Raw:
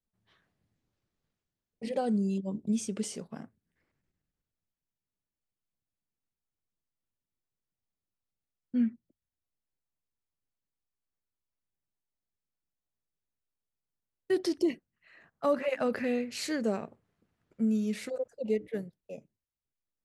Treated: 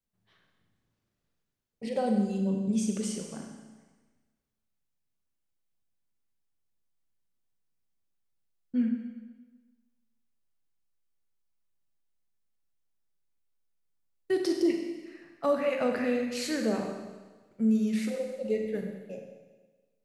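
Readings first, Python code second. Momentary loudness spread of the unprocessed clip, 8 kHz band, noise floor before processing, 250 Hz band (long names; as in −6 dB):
16 LU, +2.0 dB, below −85 dBFS, +2.5 dB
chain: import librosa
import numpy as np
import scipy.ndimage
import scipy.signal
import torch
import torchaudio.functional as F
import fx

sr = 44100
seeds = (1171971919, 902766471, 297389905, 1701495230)

y = fx.rev_schroeder(x, sr, rt60_s=1.3, comb_ms=32, drr_db=2.5)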